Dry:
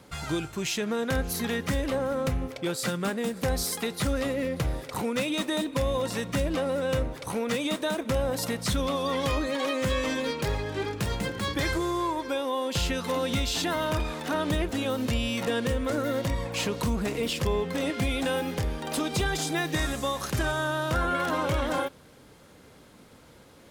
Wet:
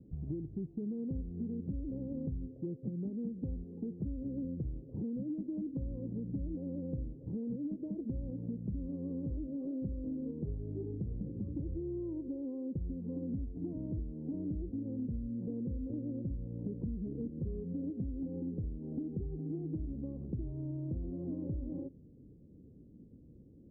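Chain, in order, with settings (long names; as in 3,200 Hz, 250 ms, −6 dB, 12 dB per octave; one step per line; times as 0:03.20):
inverse Chebyshev low-pass filter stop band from 1,500 Hz, stop band 70 dB
downward compressor, threshold −35 dBFS, peak gain reduction 11 dB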